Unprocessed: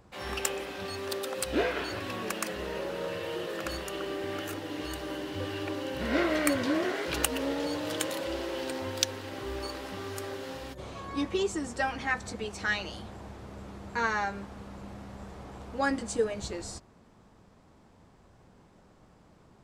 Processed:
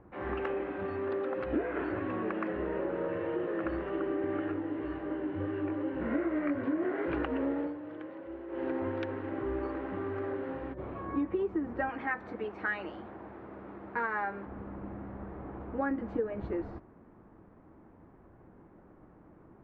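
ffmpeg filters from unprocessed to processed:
-filter_complex "[0:a]asplit=3[a][b][c];[a]afade=t=out:st=4.51:d=0.02[d];[b]flanger=delay=18:depth=3.6:speed=2.7,afade=t=in:st=4.51:d=0.02,afade=t=out:st=6.8:d=0.02[e];[c]afade=t=in:st=6.8:d=0.02[f];[d][e][f]amix=inputs=3:normalize=0,asettb=1/sr,asplit=3[g][h][i];[g]atrim=end=11.894[j];[h]atrim=start=11.89:end=14.46,asetpts=PTS-STARTPTS,afade=t=in:d=0.004:c=qsin,afade=t=out:st=2.566:d=0.004:c=qsin,aemphasis=mode=production:type=bsi[k];[i]atrim=start=14.456[l];[j][k]acrossfade=d=0.004:c1=hsin:c2=qsin[m];[m][l]acrossfade=d=0.004:c1=qsin:c2=hsin,asplit=3[n][o][p];[n]atrim=end=7.74,asetpts=PTS-STARTPTS,afade=t=out:st=7.54:d=0.2:silence=0.223872[q];[o]atrim=start=7.74:end=8.48,asetpts=PTS-STARTPTS,volume=-13dB[r];[p]atrim=start=8.48,asetpts=PTS-STARTPTS,afade=t=in:d=0.2:silence=0.223872[s];[q][r][s]concat=n=3:v=0:a=1,lowpass=f=1.9k:w=0.5412,lowpass=f=1.9k:w=1.3066,equalizer=f=320:t=o:w=0.55:g=8.5,acompressor=threshold=-28dB:ratio=6"

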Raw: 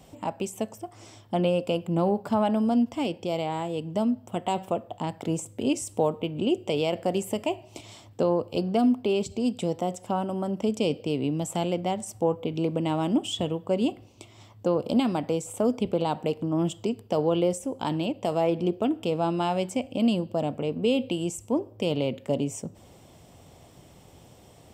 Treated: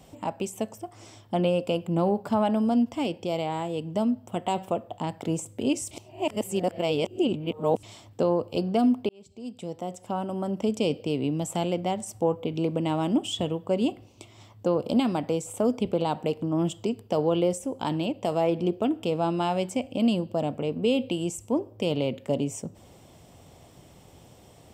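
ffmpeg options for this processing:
-filter_complex "[0:a]asplit=4[a][b][c][d];[a]atrim=end=5.912[e];[b]atrim=start=5.908:end=7.832,asetpts=PTS-STARTPTS,areverse[f];[c]atrim=start=7.828:end=9.09,asetpts=PTS-STARTPTS,afade=t=out:st=1.258:d=0.004:c=hsin[g];[d]atrim=start=9.09,asetpts=PTS-STARTPTS,afade=t=in:d=1.43[h];[e][f]acrossfade=d=0.004:c1=hsin:c2=hsin[i];[g][h]concat=n=2:v=0:a=1[j];[i][j]acrossfade=d=0.004:c1=hsin:c2=hsin"

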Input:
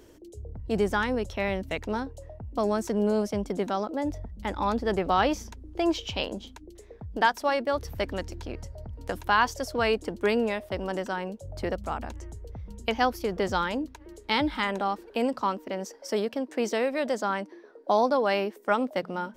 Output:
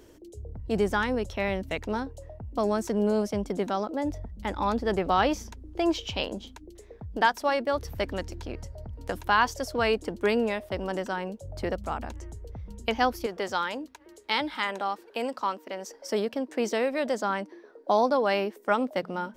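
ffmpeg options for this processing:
-filter_complex "[0:a]asettb=1/sr,asplit=3[a][b][c];[a]atrim=end=13.264[d];[b]atrim=start=13.26:end=15.88,asetpts=PTS-STARTPTS,afade=t=in:d=0.004:c=qsin,afade=t=out:st=2.616:d=0.004:c=qsin,highpass=f=550:p=1[e];[c]atrim=start=15.876[f];[d][e]acrossfade=d=0.004:c1=hsin:c2=qsin[g];[g][f]acrossfade=d=0.004:c1=qsin:c2=hsin"

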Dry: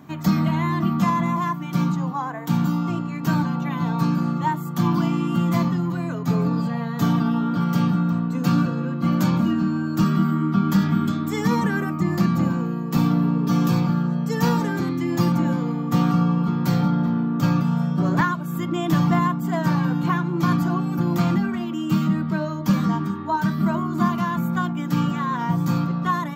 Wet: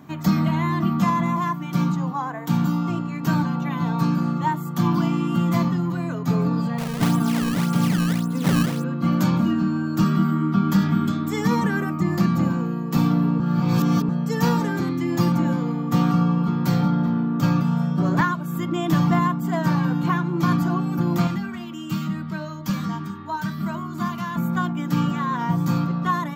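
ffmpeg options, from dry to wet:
-filter_complex "[0:a]asettb=1/sr,asplit=3[a][b][c];[a]atrim=end=6.784[d];[b]atrim=start=6.78:end=8.84,asetpts=PTS-STARTPTS,afade=t=in:d=0.004:c=qsin,afade=t=out:st=2.056:d=0.004:c=qsin,acrusher=samples=18:mix=1:aa=0.000001:lfo=1:lforange=28.8:lforate=1.8[e];[c]atrim=start=8.836[f];[d][e]acrossfade=d=0.004:c1=hsin:c2=qsin[g];[g][f]acrossfade=d=0.004:c1=qsin:c2=hsin,asettb=1/sr,asplit=3[h][i][j];[h]atrim=end=21.274[k];[i]atrim=start=21.27:end=24.36,asetpts=PTS-STARTPTS,afade=t=in:d=0.004:c=qsin,afade=t=out:st=3.086:d=0.004:c=qsin,equalizer=f=390:w=0.36:g=-8[l];[j]atrim=start=24.356[m];[k][l]acrossfade=d=0.004:c1=hsin:c2=qsin[n];[n][m]acrossfade=d=0.004:c1=qsin:c2=hsin,asplit=3[o][p][q];[o]atrim=end=13.402[r];[p]atrim=start=13.398:end=14.092,asetpts=PTS-STARTPTS,areverse[s];[q]atrim=start=14.088[t];[r][s]acrossfade=d=0.004:c1=hsin:c2=hsin[u];[u][t]acrossfade=d=0.004:c1=hsin:c2=hsin"

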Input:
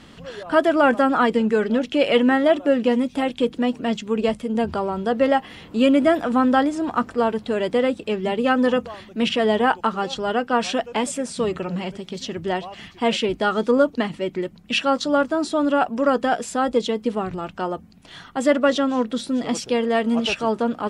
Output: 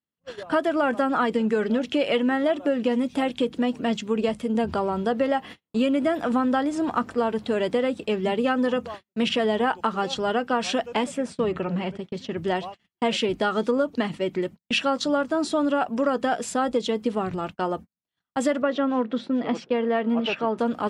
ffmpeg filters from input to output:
-filter_complex "[0:a]asettb=1/sr,asplit=3[a][b][c];[a]atrim=end=11.044[d];[b]atrim=start=11.04:end=12.38,asetpts=PTS-STARTPTS,afade=t=in:d=0.004:c=qsin,afade=t=out:st=1.336:d=0.004:c=qsin,bass=f=250:g=0,treble=f=4k:g=-11[e];[c]atrim=start=12.376[f];[d][e]acrossfade=d=0.004:c1=hsin:c2=qsin[g];[g][f]acrossfade=d=0.004:c1=qsin:c2=hsin,asettb=1/sr,asplit=3[h][i][j];[h]atrim=end=18.624[k];[i]atrim=start=18.62:end=20.58,asetpts=PTS-STARTPTS,afade=t=in:d=0.004:c=qsin,afade=t=out:st=1.956:d=0.004:c=qsin,highpass=160,lowpass=2.5k[l];[j]atrim=start=20.576[m];[k][l]acrossfade=d=0.004:c1=hsin:c2=qsin[n];[n][m]acrossfade=d=0.004:c1=qsin:c2=hsin,highpass=60,agate=range=-48dB:threshold=-34dB:ratio=16:detection=peak,acompressor=threshold=-19dB:ratio=6"

